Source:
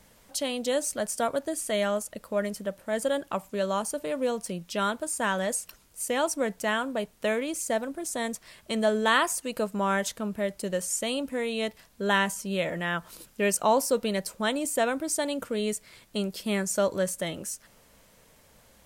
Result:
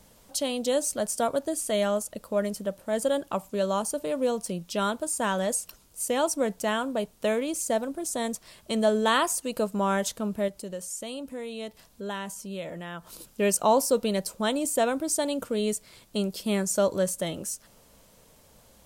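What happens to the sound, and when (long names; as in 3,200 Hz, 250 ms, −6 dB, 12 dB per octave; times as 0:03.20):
0:10.48–0:13.07: downward compressor 1.5 to 1, threshold −48 dBFS
whole clip: parametric band 1,900 Hz −6.5 dB 1 octave; level +2 dB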